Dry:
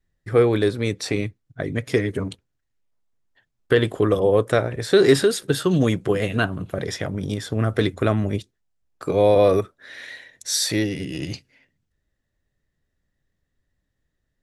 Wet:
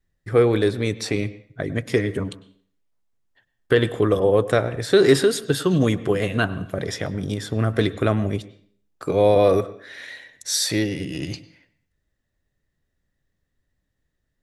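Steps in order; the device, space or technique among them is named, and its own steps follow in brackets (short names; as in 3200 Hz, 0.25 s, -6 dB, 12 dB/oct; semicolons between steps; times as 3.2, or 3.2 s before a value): filtered reverb send (on a send: HPF 160 Hz + LPF 4400 Hz 12 dB/oct + reverb RT60 0.50 s, pre-delay 95 ms, DRR 16 dB)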